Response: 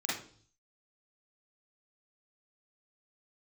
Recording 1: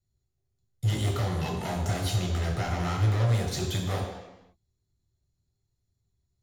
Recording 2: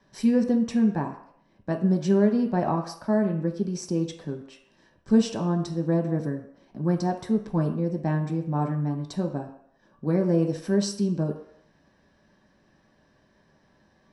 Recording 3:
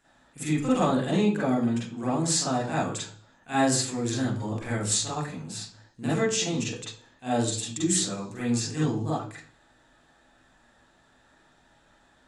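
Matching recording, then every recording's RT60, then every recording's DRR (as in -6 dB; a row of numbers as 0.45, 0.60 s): 3; 0.95, 0.70, 0.50 s; -1.0, 2.0, -8.0 dB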